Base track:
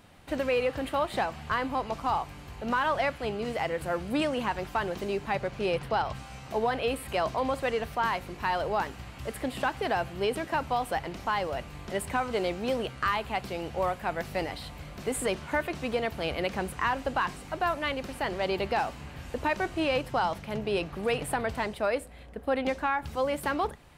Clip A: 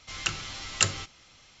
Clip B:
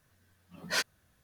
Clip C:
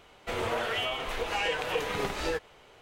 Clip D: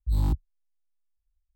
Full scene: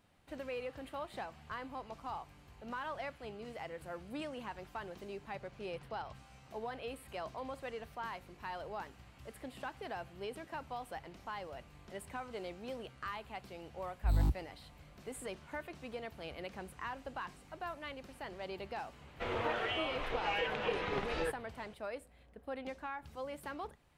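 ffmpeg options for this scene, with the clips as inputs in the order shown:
ffmpeg -i bed.wav -i cue0.wav -i cue1.wav -i cue2.wav -i cue3.wav -filter_complex "[0:a]volume=-14.5dB[link_01];[3:a]lowpass=3400[link_02];[4:a]atrim=end=1.55,asetpts=PTS-STARTPTS,volume=-5.5dB,afade=type=in:duration=0.004:curve=hsin,afade=type=out:start_time=1.546:duration=0.004:curve=hsin,adelay=13970[link_03];[link_02]atrim=end=2.81,asetpts=PTS-STARTPTS,volume=-5dB,afade=type=in:duration=0.004:curve=hsin,afade=type=out:start_time=2.806:duration=0.004:curve=hsin,adelay=18930[link_04];[link_01][link_03][link_04]amix=inputs=3:normalize=0" out.wav

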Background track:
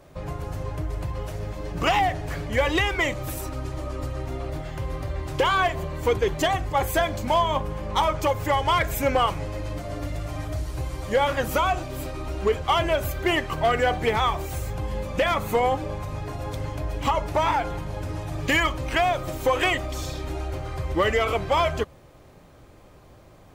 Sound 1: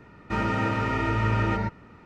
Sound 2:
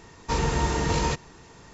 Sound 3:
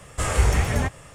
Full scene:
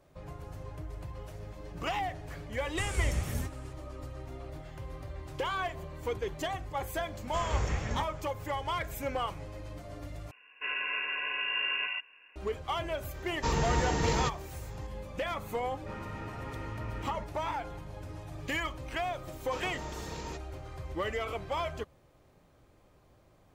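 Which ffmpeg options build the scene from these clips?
ffmpeg -i bed.wav -i cue0.wav -i cue1.wav -i cue2.wav -filter_complex "[3:a]asplit=2[link_01][link_02];[1:a]asplit=2[link_03][link_04];[2:a]asplit=2[link_05][link_06];[0:a]volume=-12dB[link_07];[link_01]acrossover=split=330|3000[link_08][link_09][link_10];[link_09]acompressor=threshold=-34dB:ratio=6:attack=3.2:release=140:knee=2.83:detection=peak[link_11];[link_08][link_11][link_10]amix=inputs=3:normalize=0[link_12];[link_02]aresample=16000,aresample=44100[link_13];[link_03]lowpass=frequency=2500:width_type=q:width=0.5098,lowpass=frequency=2500:width_type=q:width=0.6013,lowpass=frequency=2500:width_type=q:width=0.9,lowpass=frequency=2500:width_type=q:width=2.563,afreqshift=-2900[link_14];[link_06]highpass=140[link_15];[link_07]asplit=2[link_16][link_17];[link_16]atrim=end=10.314[link_18];[link_14]atrim=end=2.05,asetpts=PTS-STARTPTS,volume=-8.5dB[link_19];[link_17]atrim=start=12.356[link_20];[link_12]atrim=end=1.14,asetpts=PTS-STARTPTS,volume=-10.5dB,afade=type=in:duration=0.004:curve=hsin,afade=type=out:start_time=1.136:duration=0.004:curve=hsin,adelay=2590[link_21];[link_13]atrim=end=1.14,asetpts=PTS-STARTPTS,volume=-11.5dB,afade=type=in:duration=0.004:curve=hsin,afade=type=out:start_time=1.136:duration=0.004:curve=hsin,adelay=7150[link_22];[link_05]atrim=end=1.73,asetpts=PTS-STARTPTS,volume=-4.5dB,afade=type=in:duration=0.004:curve=hsin,afade=type=out:start_time=1.726:duration=0.004:curve=hsin,adelay=13140[link_23];[link_04]atrim=end=2.05,asetpts=PTS-STARTPTS,volume=-17dB,afade=type=in:duration=0.004:curve=hsin,afade=type=out:start_time=2.046:duration=0.004:curve=hsin,adelay=686196S[link_24];[link_15]atrim=end=1.73,asetpts=PTS-STARTPTS,volume=-16dB,afade=type=in:duration=0.004:curve=hsin,afade=type=out:start_time=1.726:duration=0.004:curve=hsin,adelay=19220[link_25];[link_18][link_19]acrossfade=duration=0.004:curve1=hsin:curve2=hsin[link_26];[link_26][link_20]acrossfade=duration=0.004:curve1=hsin:curve2=hsin[link_27];[link_27][link_21][link_22][link_23][link_24][link_25]amix=inputs=6:normalize=0" out.wav

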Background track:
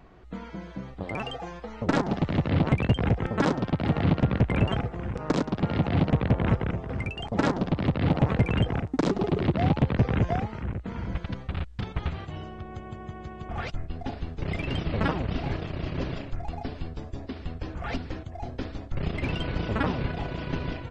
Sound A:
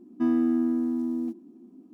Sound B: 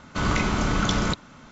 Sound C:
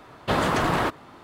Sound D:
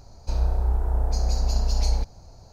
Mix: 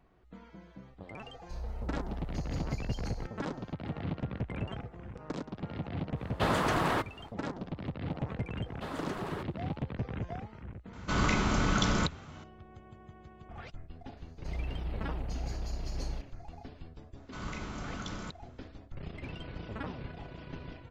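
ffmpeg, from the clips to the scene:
ffmpeg -i bed.wav -i cue0.wav -i cue1.wav -i cue2.wav -i cue3.wav -filter_complex "[4:a]asplit=2[link_01][link_02];[3:a]asplit=2[link_03][link_04];[2:a]asplit=2[link_05][link_06];[0:a]volume=-13dB[link_07];[link_01]alimiter=limit=-19.5dB:level=0:latency=1:release=30,atrim=end=2.52,asetpts=PTS-STARTPTS,volume=-12.5dB,afade=type=in:duration=0.004:curve=hsin,afade=type=out:start_time=2.516:duration=0.004:curve=hsin,adelay=1220[link_08];[link_03]atrim=end=1.23,asetpts=PTS-STARTPTS,volume=-6dB,afade=type=in:duration=0.1,afade=type=out:start_time=1.13:duration=0.1,adelay=6120[link_09];[link_04]atrim=end=1.23,asetpts=PTS-STARTPTS,volume=-17.5dB,afade=type=in:duration=0.004:curve=hsin,afade=type=out:start_time=1.226:duration=0.004:curve=hsin,adelay=8530[link_10];[link_05]atrim=end=1.51,asetpts=PTS-STARTPTS,volume=-4.5dB,afade=type=in:duration=0.004:curve=hsin,afade=type=out:start_time=1.506:duration=0.004:curve=hsin,adelay=10930[link_11];[link_02]atrim=end=2.52,asetpts=PTS-STARTPTS,volume=-14.5dB,afade=type=in:duration=0.004:curve=hsin,afade=type=out:start_time=2.516:duration=0.004:curve=hsin,adelay=14170[link_12];[link_06]atrim=end=1.51,asetpts=PTS-STARTPTS,volume=-17dB,afade=type=in:duration=0.004:curve=hsin,afade=type=out:start_time=1.506:duration=0.004:curve=hsin,adelay=17170[link_13];[link_07][link_08][link_09][link_10][link_11][link_12][link_13]amix=inputs=7:normalize=0" out.wav

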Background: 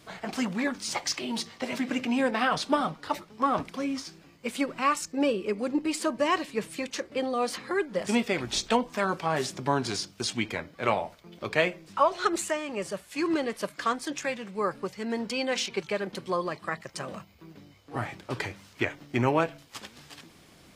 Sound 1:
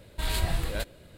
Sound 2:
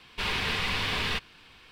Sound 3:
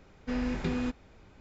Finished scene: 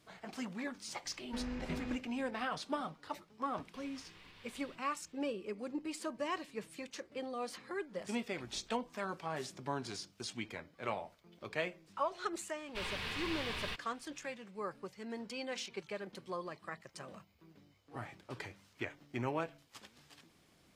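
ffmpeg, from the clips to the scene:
ffmpeg -i bed.wav -i cue0.wav -i cue1.wav -i cue2.wav -filter_complex "[2:a]asplit=2[link_01][link_02];[0:a]volume=-12.5dB[link_03];[3:a]lowpass=5600[link_04];[link_01]acompressor=threshold=-36dB:ratio=5:attack=0.12:release=353:knee=1:detection=peak[link_05];[link_04]atrim=end=1.4,asetpts=PTS-STARTPTS,volume=-9.5dB,afade=type=in:duration=0.004:curve=hsin,afade=type=out:start_time=1.396:duration=0.004:curve=hsin,adelay=1050[link_06];[link_05]atrim=end=1.71,asetpts=PTS-STARTPTS,volume=-16.5dB,afade=type=in:duration=0.004:curve=hsin,afade=type=out:start_time=1.706:duration=0.004:curve=hsin,adelay=157437S[link_07];[link_02]atrim=end=1.71,asetpts=PTS-STARTPTS,volume=-11.5dB,afade=type=in:duration=0.004:curve=hsin,afade=type=out:start_time=1.706:duration=0.004:curve=hsin,adelay=12570[link_08];[link_03][link_06][link_07][link_08]amix=inputs=4:normalize=0" out.wav

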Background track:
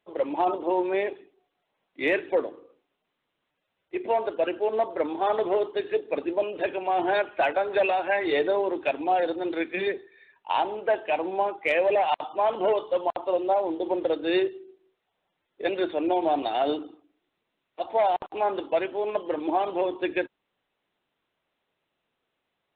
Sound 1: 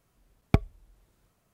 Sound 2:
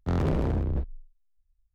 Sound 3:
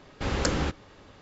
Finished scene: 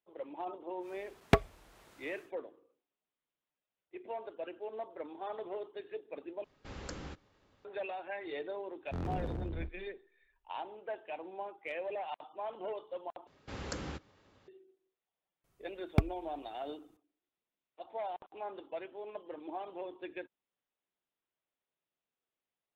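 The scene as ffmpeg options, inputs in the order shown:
ffmpeg -i bed.wav -i cue0.wav -i cue1.wav -i cue2.wav -filter_complex "[1:a]asplit=2[link_01][link_02];[3:a]asplit=2[link_03][link_04];[0:a]volume=-16.5dB[link_05];[link_01]asplit=2[link_06][link_07];[link_07]highpass=frequency=720:poles=1,volume=26dB,asoftclip=type=tanh:threshold=-4.5dB[link_08];[link_06][link_08]amix=inputs=2:normalize=0,lowpass=frequency=3600:poles=1,volume=-6dB[link_09];[link_04]highpass=52[link_10];[link_05]asplit=3[link_11][link_12][link_13];[link_11]atrim=end=6.444[link_14];[link_03]atrim=end=1.21,asetpts=PTS-STARTPTS,volume=-17.5dB[link_15];[link_12]atrim=start=7.646:end=13.274[link_16];[link_10]atrim=end=1.21,asetpts=PTS-STARTPTS,volume=-13.5dB[link_17];[link_13]atrim=start=14.476[link_18];[link_09]atrim=end=1.53,asetpts=PTS-STARTPTS,volume=-4.5dB,afade=type=in:duration=0.1,afade=type=out:start_time=1.43:duration=0.1,adelay=790[link_19];[2:a]atrim=end=1.74,asetpts=PTS-STARTPTS,volume=-12dB,afade=type=in:duration=0.004:curve=hsin,afade=type=out:start_time=1.736:duration=0.004:curve=hsin,adelay=8850[link_20];[link_02]atrim=end=1.53,asetpts=PTS-STARTPTS,volume=-5dB,afade=type=in:duration=0.004:curve=hsin,afade=type=out:start_time=1.526:duration=0.004:curve=hsin,adelay=15440[link_21];[link_14][link_15]acrossfade=duration=0.004:curve1=hsin:curve2=hsin[link_22];[link_22][link_16]acrossfade=duration=0.004:curve1=hsin:curve2=hsin[link_23];[link_23][link_17]acrossfade=duration=0.004:curve1=hsin:curve2=hsin[link_24];[link_24][link_18]acrossfade=duration=0.004:curve1=hsin:curve2=hsin[link_25];[link_25][link_19][link_20][link_21]amix=inputs=4:normalize=0" out.wav

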